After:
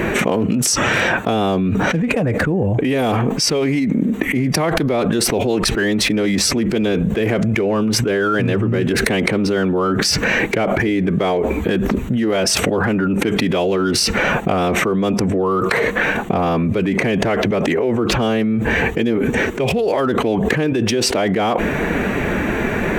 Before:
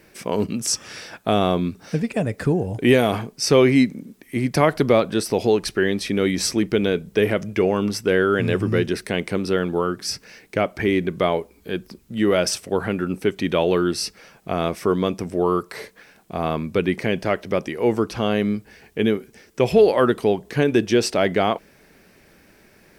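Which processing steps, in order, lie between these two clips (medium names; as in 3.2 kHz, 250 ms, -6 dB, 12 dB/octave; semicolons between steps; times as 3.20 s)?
local Wiener filter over 9 samples; formant-preserving pitch shift +1 st; level flattener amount 100%; trim -5 dB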